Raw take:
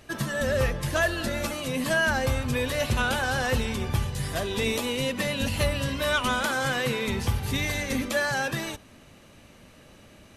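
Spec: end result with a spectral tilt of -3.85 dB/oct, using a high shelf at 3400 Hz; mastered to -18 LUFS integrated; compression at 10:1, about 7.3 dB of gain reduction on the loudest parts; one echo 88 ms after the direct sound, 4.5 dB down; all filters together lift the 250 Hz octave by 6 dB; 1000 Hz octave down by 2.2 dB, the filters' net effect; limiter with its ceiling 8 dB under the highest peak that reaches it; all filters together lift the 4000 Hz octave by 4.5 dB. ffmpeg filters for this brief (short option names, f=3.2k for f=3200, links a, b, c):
-af "equalizer=f=250:t=o:g=7,equalizer=f=1k:t=o:g=-4,highshelf=f=3.4k:g=4.5,equalizer=f=4k:t=o:g=3,acompressor=threshold=-26dB:ratio=10,alimiter=limit=-23dB:level=0:latency=1,aecho=1:1:88:0.596,volume=12.5dB"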